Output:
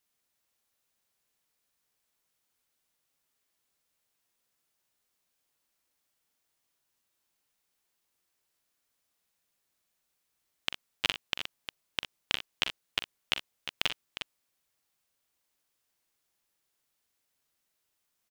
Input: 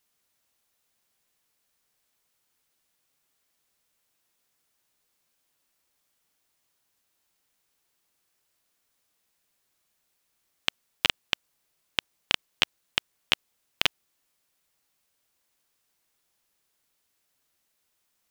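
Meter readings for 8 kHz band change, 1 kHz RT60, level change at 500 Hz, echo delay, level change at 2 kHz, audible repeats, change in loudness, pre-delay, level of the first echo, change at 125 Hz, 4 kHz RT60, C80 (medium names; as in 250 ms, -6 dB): -4.5 dB, no reverb, -4.5 dB, 43 ms, -4.5 dB, 2, -5.5 dB, no reverb, -11.5 dB, -4.5 dB, no reverb, no reverb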